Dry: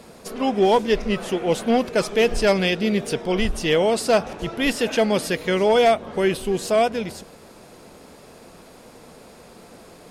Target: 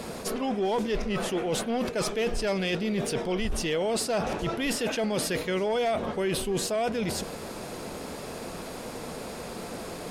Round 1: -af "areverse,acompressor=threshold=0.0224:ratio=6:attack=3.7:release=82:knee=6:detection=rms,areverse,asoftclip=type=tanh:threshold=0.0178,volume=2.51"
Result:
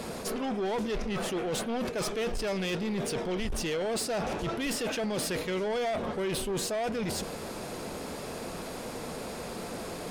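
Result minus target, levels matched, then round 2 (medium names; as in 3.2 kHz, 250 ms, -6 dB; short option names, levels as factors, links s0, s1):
saturation: distortion +14 dB
-af "areverse,acompressor=threshold=0.0224:ratio=6:attack=3.7:release=82:knee=6:detection=rms,areverse,asoftclip=type=tanh:threshold=0.0562,volume=2.51"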